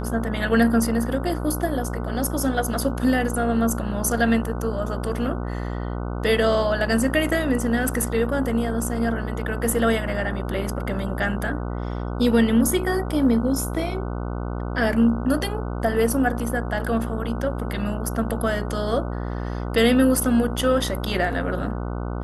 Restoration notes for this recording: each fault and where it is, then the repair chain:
mains buzz 60 Hz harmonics 25 −28 dBFS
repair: hum removal 60 Hz, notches 25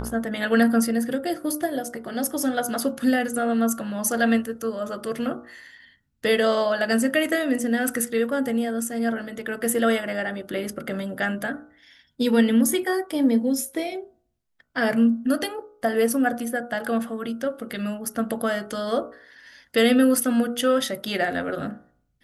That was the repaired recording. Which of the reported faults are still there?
none of them is left

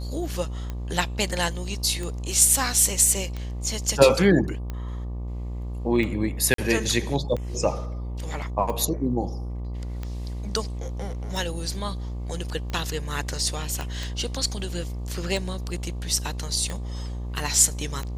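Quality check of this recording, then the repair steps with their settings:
mains buzz 60 Hz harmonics 20 −31 dBFS
scratch tick 45 rpm −19 dBFS
0:06.54–0:06.58: drop-out 43 ms
0:13.81: click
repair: click removal
hum removal 60 Hz, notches 20
repair the gap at 0:06.54, 43 ms

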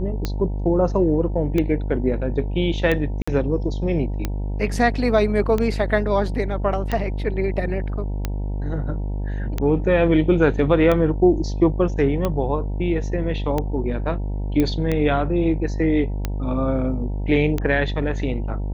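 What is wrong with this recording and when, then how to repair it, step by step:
mains buzz 50 Hz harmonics 19 −25 dBFS
scratch tick 45 rpm −10 dBFS
0:03.22–0:03.27: drop-out 55 ms
0:14.60: click −9 dBFS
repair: click removal
hum removal 50 Hz, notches 19
repair the gap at 0:03.22, 55 ms

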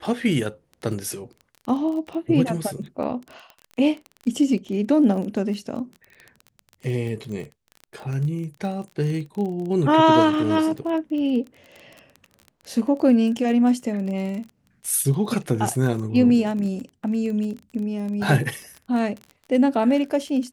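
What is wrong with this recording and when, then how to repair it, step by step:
surface crackle 23 per second −30 dBFS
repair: click removal

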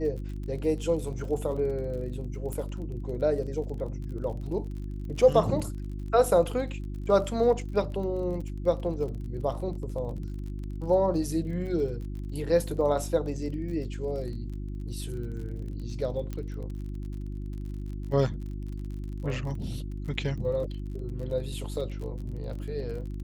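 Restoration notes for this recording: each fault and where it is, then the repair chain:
surface crackle 38 per second −38 dBFS
mains hum 50 Hz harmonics 7 −35 dBFS
0:02.53: click −22 dBFS
0:16.33: click −22 dBFS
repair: click removal
hum removal 50 Hz, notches 7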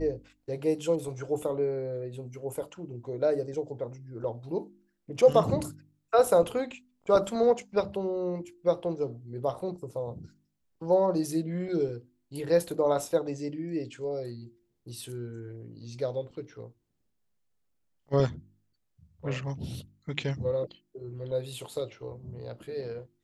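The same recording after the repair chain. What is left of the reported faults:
none of them is left

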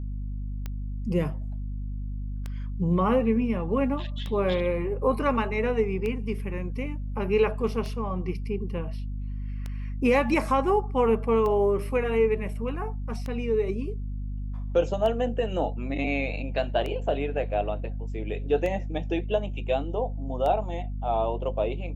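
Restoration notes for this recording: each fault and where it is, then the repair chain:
mains hum 50 Hz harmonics 5 −32 dBFS
scratch tick 33 1/3 rpm −20 dBFS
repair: click removal
hum removal 50 Hz, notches 5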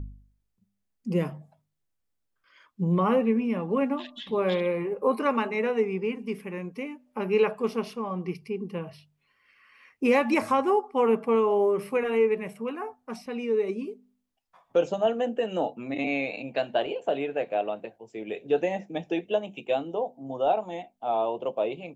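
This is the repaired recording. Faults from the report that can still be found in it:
none of them is left

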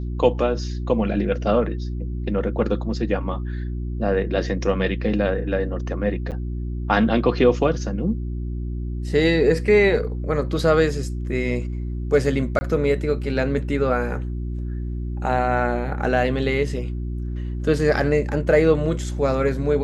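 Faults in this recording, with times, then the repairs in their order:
mains hum 60 Hz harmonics 6 −27 dBFS
0:06.31–0:06.32: drop-out 8.1 ms
0:12.59–0:12.61: drop-out 20 ms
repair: hum removal 60 Hz, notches 6
repair the gap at 0:06.31, 8.1 ms
repair the gap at 0:12.59, 20 ms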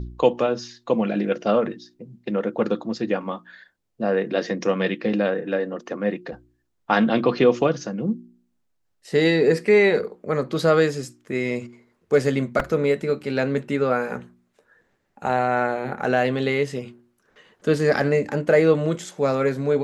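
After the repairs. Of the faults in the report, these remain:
none of them is left

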